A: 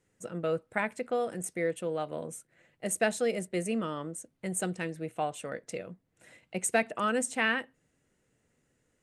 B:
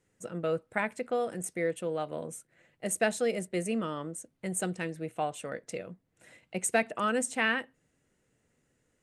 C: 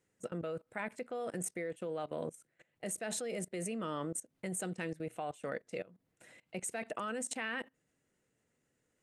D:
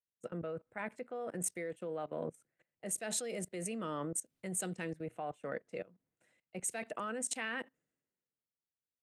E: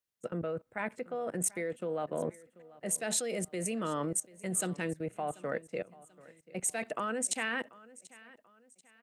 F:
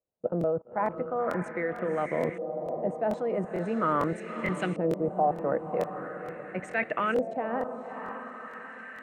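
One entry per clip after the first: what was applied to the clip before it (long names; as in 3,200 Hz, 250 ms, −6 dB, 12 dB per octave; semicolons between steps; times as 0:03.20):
no processing that can be heard
low-shelf EQ 84 Hz −8.5 dB; output level in coarse steps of 21 dB; level +4 dB
multiband upward and downward expander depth 70%; level −1 dB
repeating echo 737 ms, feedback 38%, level −21 dB; level +5 dB
feedback delay with all-pass diffusion 558 ms, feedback 49%, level −8.5 dB; auto-filter low-pass saw up 0.42 Hz 590–2,400 Hz; regular buffer underruns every 0.45 s, samples 1,024, repeat, from 0:00.39; level +4.5 dB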